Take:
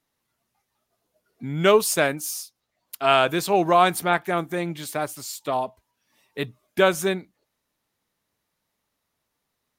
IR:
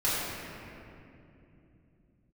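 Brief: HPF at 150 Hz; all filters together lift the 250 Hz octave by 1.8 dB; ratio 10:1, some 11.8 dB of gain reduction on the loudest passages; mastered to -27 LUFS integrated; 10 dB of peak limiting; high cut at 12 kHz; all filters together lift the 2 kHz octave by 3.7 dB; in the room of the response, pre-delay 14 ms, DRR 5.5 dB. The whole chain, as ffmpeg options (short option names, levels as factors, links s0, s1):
-filter_complex "[0:a]highpass=150,lowpass=12000,equalizer=f=250:t=o:g=4,equalizer=f=2000:t=o:g=5,acompressor=threshold=0.0794:ratio=10,alimiter=limit=0.0944:level=0:latency=1,asplit=2[s0][s1];[1:a]atrim=start_sample=2205,adelay=14[s2];[s1][s2]afir=irnorm=-1:irlink=0,volume=0.133[s3];[s0][s3]amix=inputs=2:normalize=0,volume=1.78"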